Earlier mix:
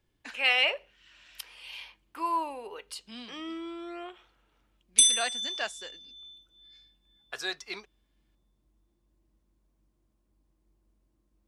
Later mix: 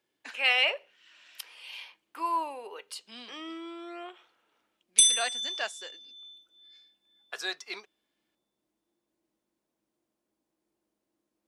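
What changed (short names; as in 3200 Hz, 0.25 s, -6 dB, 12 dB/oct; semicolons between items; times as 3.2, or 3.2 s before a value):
background: add bell 1100 Hz -5.5 dB 0.2 oct; master: add HPF 330 Hz 12 dB/oct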